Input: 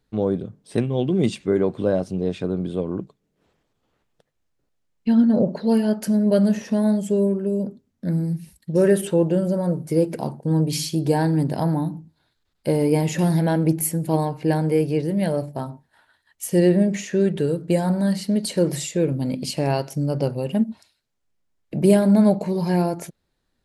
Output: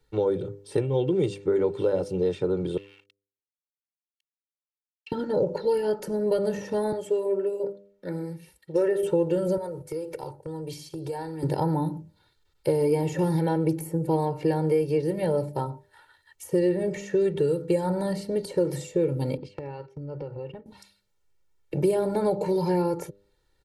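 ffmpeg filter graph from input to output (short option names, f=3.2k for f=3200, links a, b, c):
-filter_complex "[0:a]asettb=1/sr,asplit=3[a][b][c];[a]atrim=end=2.774[d];[b]atrim=start=2.77:end=5.12,asetpts=PTS-STARTPTS,afade=t=in:d=0.004:c=qsin,afade=t=out:st=2.346:d=0.004:c=qsin,acompressor=threshold=-32dB:ratio=16:attack=3.2:release=140:knee=1:detection=peak,aeval=exprs='sgn(val(0))*max(abs(val(0))-0.00668,0)':c=same,highpass=f=2.7k:t=q:w=4.9[e];[c]atrim=start=5.116[f];[d][e]acrossfade=d=0.004:c1=hsin:c2=qsin[g];[g][f]acrossfade=d=0.004:c1=qsin:c2=hsin,asettb=1/sr,asplit=3[h][i][j];[h]atrim=end=6.924[k];[i]atrim=start=6.92:end=9.03,asetpts=PTS-STARTPTS,afade=t=in:d=0.004:c=qsin,afade=t=out:st=2.106:d=0.004:c=qsin,bass=f=250:g=-15,treble=f=4k:g=-9,aecho=1:1:84:0.0891,atrim=end_sample=93051[l];[j]atrim=start=9.026[m];[k][l]acrossfade=d=0.004:c1=hsin:c2=qsin[n];[n][m]acrossfade=d=0.004:c1=qsin:c2=hsin,asettb=1/sr,asplit=3[o][p][q];[o]atrim=end=9.574[r];[p]atrim=start=9.57:end=11.43,asetpts=PTS-STARTPTS,afade=t=in:d=0.004:c=qsin,afade=t=out:st=1.856:d=0.004:c=qsin,agate=range=-7dB:threshold=-30dB:ratio=16:release=100:detection=peak,equalizer=f=210:t=o:w=0.95:g=-13,acompressor=threshold=-32dB:ratio=8:attack=3.2:release=140:knee=1:detection=peak[s];[q]atrim=start=11.426[t];[r][s]acrossfade=d=0.004:c1=hsin:c2=qsin[u];[u][t]acrossfade=d=0.004:c1=qsin:c2=hsin,asettb=1/sr,asplit=3[v][w][x];[v]atrim=end=19.374[y];[w]atrim=start=19.37:end=20.66,asetpts=PTS-STARTPTS,afade=t=in:d=0.004:c=qsin,afade=t=out:st=1.286:d=0.004:c=qsin,lowpass=2.3k,agate=range=-19dB:threshold=-33dB:ratio=16:release=100:detection=peak,acompressor=threshold=-33dB:ratio=10:attack=3.2:release=140:knee=1:detection=peak[z];[x]atrim=start=20.656[aa];[y][z]acrossfade=d=0.004:c1=hsin:c2=qsin[ab];[ab][aa]acrossfade=d=0.004:c1=qsin:c2=hsin,aecho=1:1:2.2:0.92,bandreject=f=99.91:t=h:w=4,bandreject=f=199.82:t=h:w=4,bandreject=f=299.73:t=h:w=4,bandreject=f=399.64:t=h:w=4,bandreject=f=499.55:t=h:w=4,bandreject=f=599.46:t=h:w=4,acrossover=split=96|1200[ac][ad][ae];[ac]acompressor=threshold=-52dB:ratio=4[af];[ad]acompressor=threshold=-21dB:ratio=4[ag];[ae]acompressor=threshold=-45dB:ratio=4[ah];[af][ag][ah]amix=inputs=3:normalize=0"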